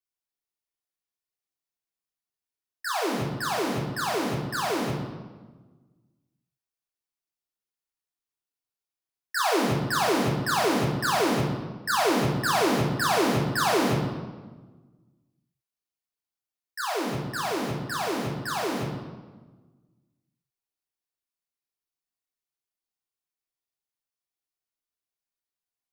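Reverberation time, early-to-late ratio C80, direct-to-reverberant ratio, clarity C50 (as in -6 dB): 1.3 s, 5.0 dB, -4.0 dB, 2.5 dB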